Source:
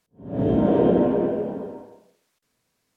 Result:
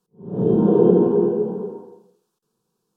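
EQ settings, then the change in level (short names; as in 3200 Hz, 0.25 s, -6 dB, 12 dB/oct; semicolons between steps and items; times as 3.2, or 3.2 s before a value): bell 290 Hz +12 dB 2.6 oct; fixed phaser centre 410 Hz, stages 8; -3.5 dB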